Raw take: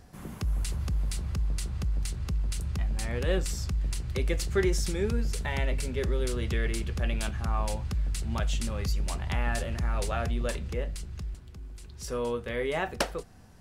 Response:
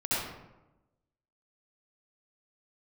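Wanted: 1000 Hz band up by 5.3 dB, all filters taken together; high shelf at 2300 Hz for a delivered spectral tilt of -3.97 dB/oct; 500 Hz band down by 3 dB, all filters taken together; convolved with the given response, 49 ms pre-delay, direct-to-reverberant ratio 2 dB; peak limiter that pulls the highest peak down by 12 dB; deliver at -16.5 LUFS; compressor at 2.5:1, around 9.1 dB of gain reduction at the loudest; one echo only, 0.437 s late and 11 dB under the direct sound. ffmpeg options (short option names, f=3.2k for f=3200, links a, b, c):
-filter_complex "[0:a]equalizer=f=500:t=o:g=-6,equalizer=f=1k:t=o:g=7,highshelf=f=2.3k:g=9,acompressor=threshold=-34dB:ratio=2.5,alimiter=level_in=0.5dB:limit=-24dB:level=0:latency=1,volume=-0.5dB,aecho=1:1:437:0.282,asplit=2[a][b];[1:a]atrim=start_sample=2205,adelay=49[c];[b][c]afir=irnorm=-1:irlink=0,volume=-11dB[d];[a][d]amix=inputs=2:normalize=0,volume=18dB"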